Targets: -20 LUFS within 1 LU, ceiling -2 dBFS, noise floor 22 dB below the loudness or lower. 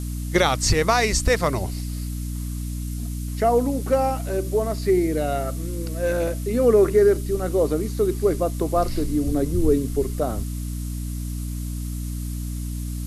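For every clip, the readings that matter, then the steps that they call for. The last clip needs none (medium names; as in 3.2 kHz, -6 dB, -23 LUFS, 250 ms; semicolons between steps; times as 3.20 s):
hum 60 Hz; highest harmonic 300 Hz; hum level -26 dBFS; noise floor -29 dBFS; noise floor target -45 dBFS; loudness -23.0 LUFS; peak level -6.5 dBFS; loudness target -20.0 LUFS
-> hum notches 60/120/180/240/300 Hz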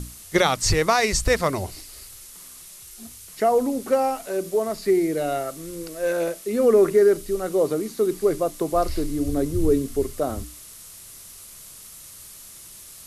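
hum not found; noise floor -44 dBFS; noise floor target -45 dBFS
-> noise print and reduce 6 dB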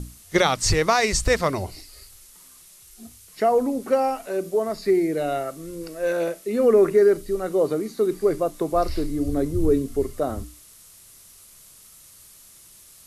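noise floor -50 dBFS; loudness -22.5 LUFS; peak level -6.5 dBFS; loudness target -20.0 LUFS
-> trim +2.5 dB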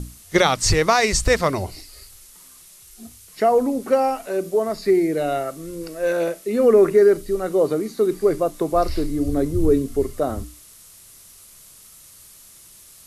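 loudness -20.0 LUFS; peak level -4.0 dBFS; noise floor -47 dBFS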